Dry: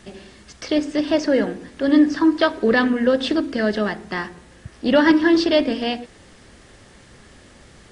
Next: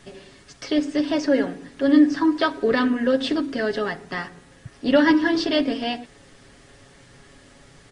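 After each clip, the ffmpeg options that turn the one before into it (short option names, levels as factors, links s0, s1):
-af "aecho=1:1:7.2:0.58,volume=0.668"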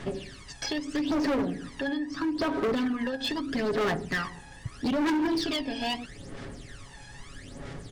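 -af "acompressor=threshold=0.0562:ratio=10,aphaser=in_gain=1:out_gain=1:delay=1.2:decay=0.72:speed=0.78:type=sinusoidal,asoftclip=type=hard:threshold=0.0631"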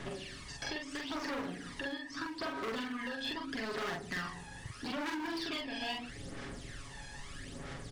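-filter_complex "[0:a]acrossover=split=890|3000[s0][s1][s2];[s0]acompressor=threshold=0.00794:ratio=4[s3];[s1]acompressor=threshold=0.0112:ratio=4[s4];[s2]acompressor=threshold=0.00501:ratio=4[s5];[s3][s4][s5]amix=inputs=3:normalize=0,asplit=2[s6][s7];[s7]adelay=45,volume=0.794[s8];[s6][s8]amix=inputs=2:normalize=0,volume=0.75"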